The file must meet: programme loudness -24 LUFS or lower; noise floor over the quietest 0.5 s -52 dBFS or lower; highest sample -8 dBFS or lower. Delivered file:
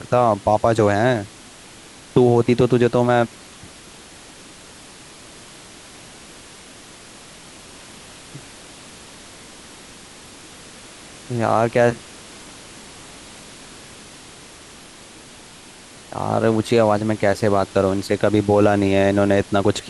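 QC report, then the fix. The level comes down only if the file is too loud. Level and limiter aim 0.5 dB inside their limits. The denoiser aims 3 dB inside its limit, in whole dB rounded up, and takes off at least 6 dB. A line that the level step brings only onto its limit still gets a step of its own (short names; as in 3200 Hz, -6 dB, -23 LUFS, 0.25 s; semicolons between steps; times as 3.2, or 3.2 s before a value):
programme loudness -18.0 LUFS: fail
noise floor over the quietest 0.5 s -43 dBFS: fail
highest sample -4.0 dBFS: fail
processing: denoiser 6 dB, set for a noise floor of -43 dBFS; gain -6.5 dB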